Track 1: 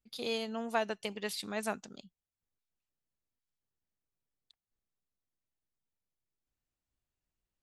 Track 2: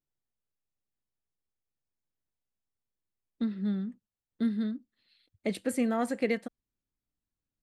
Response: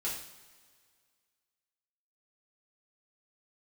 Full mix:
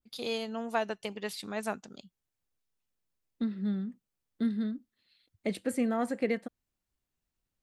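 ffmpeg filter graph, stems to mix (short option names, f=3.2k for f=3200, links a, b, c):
-filter_complex "[0:a]volume=1.5dB[a];[1:a]volume=-1dB[b];[a][b]amix=inputs=2:normalize=0,adynamicequalizer=threshold=0.00398:dfrequency=2100:dqfactor=0.7:tfrequency=2100:tqfactor=0.7:attack=5:release=100:ratio=0.375:range=2:mode=cutabove:tftype=highshelf"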